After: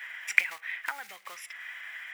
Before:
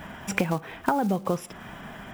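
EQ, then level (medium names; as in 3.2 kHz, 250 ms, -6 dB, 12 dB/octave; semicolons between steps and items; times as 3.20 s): resonant high-pass 2 kHz, resonance Q 6.1; -4.0 dB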